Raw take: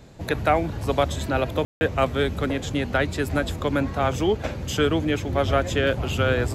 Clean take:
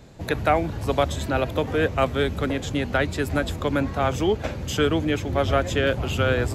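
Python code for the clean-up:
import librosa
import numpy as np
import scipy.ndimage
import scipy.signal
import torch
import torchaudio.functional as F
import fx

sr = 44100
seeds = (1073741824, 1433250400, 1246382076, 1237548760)

y = fx.fix_ambience(x, sr, seeds[0], print_start_s=0.0, print_end_s=0.5, start_s=1.65, end_s=1.81)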